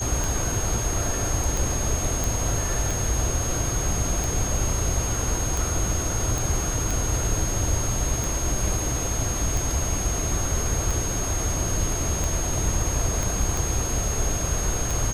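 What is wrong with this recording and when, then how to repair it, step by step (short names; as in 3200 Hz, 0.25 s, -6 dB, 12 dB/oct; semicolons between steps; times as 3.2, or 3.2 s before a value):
tick 45 rpm
tone 6500 Hz -29 dBFS
2.24 pop
6.38 pop
13.23 pop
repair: de-click; notch 6500 Hz, Q 30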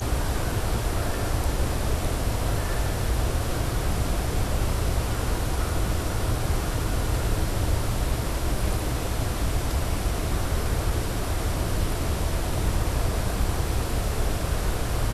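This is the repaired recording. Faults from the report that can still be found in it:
13.23 pop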